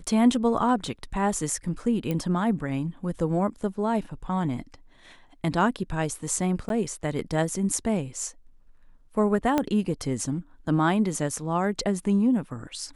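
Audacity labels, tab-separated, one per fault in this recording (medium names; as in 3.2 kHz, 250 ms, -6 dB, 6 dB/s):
2.110000	2.110000	pop -16 dBFS
6.690000	6.700000	dropout 12 ms
9.580000	9.580000	pop -10 dBFS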